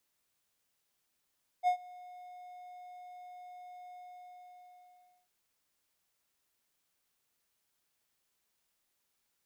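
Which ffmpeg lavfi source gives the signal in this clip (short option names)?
-f lavfi -i "aevalsrc='0.0891*(1-4*abs(mod(722*t+0.25,1)-0.5))':d=3.65:s=44100,afade=t=in:d=0.045,afade=t=out:st=0.045:d=0.092:silence=0.0631,afade=t=out:st=2.31:d=1.34"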